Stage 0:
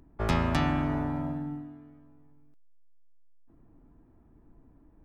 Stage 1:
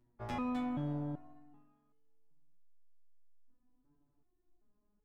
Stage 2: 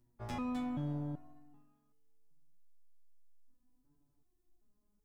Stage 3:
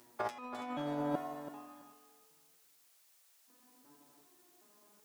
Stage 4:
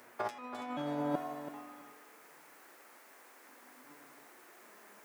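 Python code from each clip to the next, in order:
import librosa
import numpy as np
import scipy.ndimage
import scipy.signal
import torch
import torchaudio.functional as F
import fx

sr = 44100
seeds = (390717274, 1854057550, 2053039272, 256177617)

y1 = fx.dynamic_eq(x, sr, hz=530.0, q=0.74, threshold_db=-40.0, ratio=4.0, max_db=5)
y1 = fx.resonator_held(y1, sr, hz=2.6, low_hz=120.0, high_hz=430.0)
y1 = y1 * librosa.db_to_amplitude(-4.0)
y2 = fx.bass_treble(y1, sr, bass_db=4, treble_db=8)
y2 = y2 * librosa.db_to_amplitude(-3.0)
y3 = scipy.signal.sosfilt(scipy.signal.butter(2, 530.0, 'highpass', fs=sr, output='sos'), y2)
y3 = fx.over_compress(y3, sr, threshold_db=-53.0, ratio=-0.5)
y3 = fx.echo_feedback(y3, sr, ms=331, feedback_pct=18, wet_db=-11.5)
y3 = y3 * librosa.db_to_amplitude(16.5)
y4 = scipy.signal.sosfilt(scipy.signal.butter(2, 87.0, 'highpass', fs=sr, output='sos'), y3)
y4 = fx.rider(y4, sr, range_db=4, speed_s=2.0)
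y4 = fx.dmg_noise_band(y4, sr, seeds[0], low_hz=260.0, high_hz=2100.0, level_db=-60.0)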